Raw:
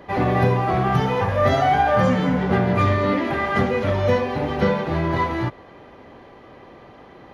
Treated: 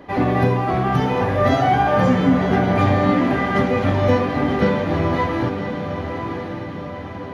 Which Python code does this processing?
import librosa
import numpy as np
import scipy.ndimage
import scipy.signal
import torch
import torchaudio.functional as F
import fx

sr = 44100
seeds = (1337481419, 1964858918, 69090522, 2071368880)

y = fx.peak_eq(x, sr, hz=270.0, db=8.0, octaves=0.32)
y = fx.echo_diffused(y, sr, ms=1019, feedback_pct=54, wet_db=-7)